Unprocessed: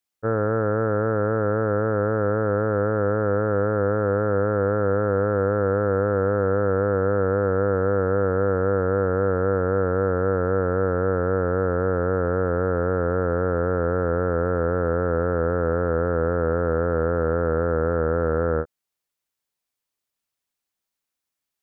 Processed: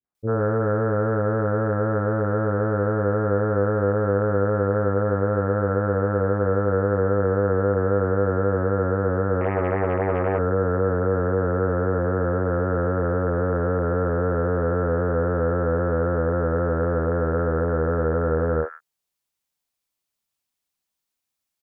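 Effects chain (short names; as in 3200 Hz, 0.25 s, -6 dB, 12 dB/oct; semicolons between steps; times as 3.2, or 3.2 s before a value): three bands offset in time lows, mids, highs 40/150 ms, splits 430/1600 Hz; 9.41–10.39 Doppler distortion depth 0.49 ms; gain +2 dB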